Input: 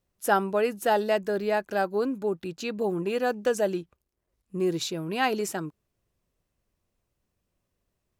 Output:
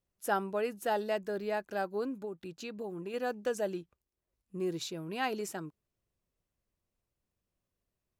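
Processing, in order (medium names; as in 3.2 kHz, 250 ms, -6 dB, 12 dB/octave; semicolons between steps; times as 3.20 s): 2.24–3.14 s: compression 3:1, threshold -30 dBFS, peak gain reduction 6 dB; trim -8 dB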